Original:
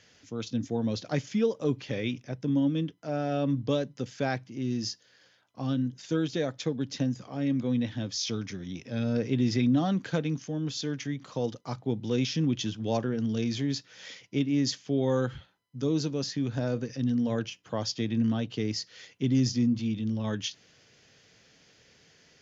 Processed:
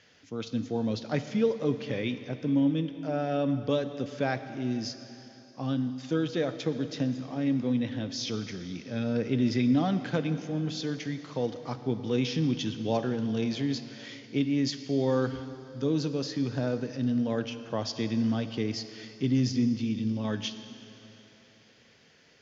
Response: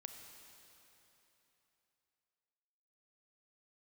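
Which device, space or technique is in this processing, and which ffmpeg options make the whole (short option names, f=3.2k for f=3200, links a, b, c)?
filtered reverb send: -filter_complex "[0:a]asplit=2[a][b];[b]highpass=f=150:p=1,lowpass=5.3k[c];[1:a]atrim=start_sample=2205[d];[c][d]afir=irnorm=-1:irlink=0,volume=6.5dB[e];[a][e]amix=inputs=2:normalize=0,volume=-5.5dB"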